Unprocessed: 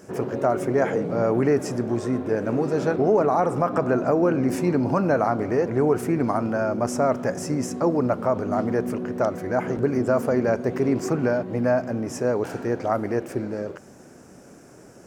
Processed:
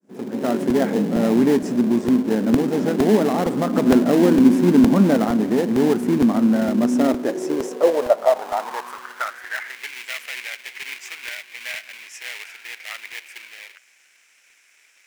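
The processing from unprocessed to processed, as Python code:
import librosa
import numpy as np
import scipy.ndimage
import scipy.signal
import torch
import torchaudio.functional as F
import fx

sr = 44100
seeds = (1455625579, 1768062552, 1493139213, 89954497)

p1 = fx.fade_in_head(x, sr, length_s=0.51)
p2 = fx.dynamic_eq(p1, sr, hz=280.0, q=0.74, threshold_db=-28.0, ratio=4.0, max_db=3, at=(3.65, 5.17))
p3 = fx.sample_hold(p2, sr, seeds[0], rate_hz=1300.0, jitter_pct=20)
p4 = p2 + (p3 * librosa.db_to_amplitude(-5.0))
p5 = fx.filter_sweep_highpass(p4, sr, from_hz=220.0, to_hz=2300.0, start_s=6.79, end_s=9.91, q=4.4)
p6 = fx.buffer_crackle(p5, sr, first_s=0.7, period_s=0.46, block=128, kind='repeat')
y = p6 * librosa.db_to_amplitude(-4.0)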